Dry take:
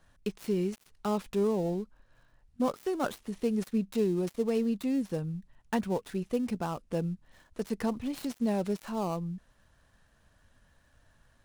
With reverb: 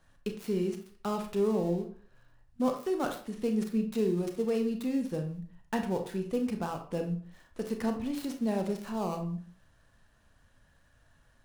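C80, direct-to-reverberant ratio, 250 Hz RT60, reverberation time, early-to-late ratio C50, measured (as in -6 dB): 13.0 dB, 4.5 dB, 0.50 s, 0.50 s, 8.5 dB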